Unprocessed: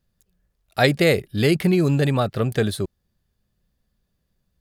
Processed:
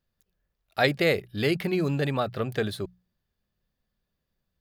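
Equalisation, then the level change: low shelf 400 Hz -6 dB; bell 8900 Hz -9.5 dB 1.1 oct; notches 60/120/180 Hz; -3.0 dB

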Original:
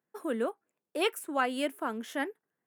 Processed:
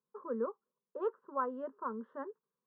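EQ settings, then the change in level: ladder low-pass 1100 Hz, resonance 65%; bell 870 Hz -13 dB 0.49 oct; fixed phaser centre 460 Hz, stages 8; +7.5 dB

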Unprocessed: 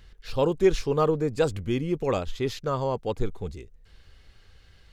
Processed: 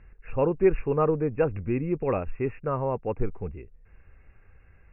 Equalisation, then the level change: brick-wall FIR low-pass 2800 Hz; air absorption 180 m; 0.0 dB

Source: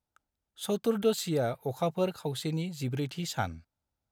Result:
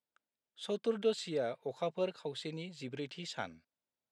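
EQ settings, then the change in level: speaker cabinet 280–7000 Hz, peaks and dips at 320 Hz -4 dB, 800 Hz -8 dB, 1300 Hz -6 dB, 4400 Hz -3 dB, 6400 Hz -8 dB; -3.0 dB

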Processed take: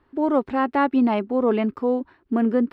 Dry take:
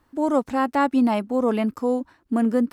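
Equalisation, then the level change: air absorption 420 m; bell 390 Hz +10.5 dB 0.27 oct; high shelf 2100 Hz +10.5 dB; 0.0 dB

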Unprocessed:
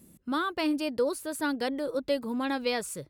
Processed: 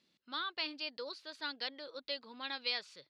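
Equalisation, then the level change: band-pass 4400 Hz, Q 2.7; air absorption 260 m; +11.0 dB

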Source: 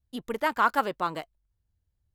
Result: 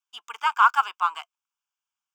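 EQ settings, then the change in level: HPF 880 Hz 24 dB/oct; high shelf 9000 Hz -7.5 dB; fixed phaser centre 2800 Hz, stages 8; +8.0 dB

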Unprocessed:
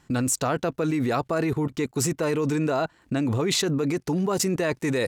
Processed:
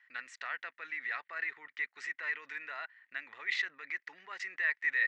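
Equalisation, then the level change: ladder band-pass 2000 Hz, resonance 80%; air absorption 130 m; +4.5 dB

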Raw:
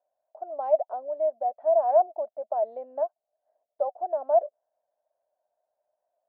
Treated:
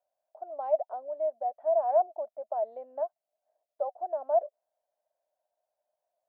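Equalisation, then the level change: low shelf 460 Hz -5 dB; -2.5 dB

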